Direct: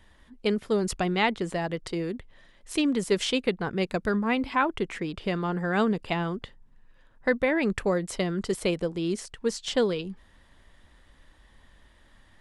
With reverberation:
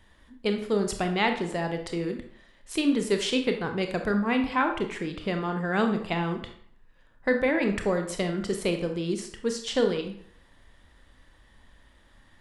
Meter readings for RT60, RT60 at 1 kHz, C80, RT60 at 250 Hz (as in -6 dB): 0.60 s, 0.60 s, 11.5 dB, 0.55 s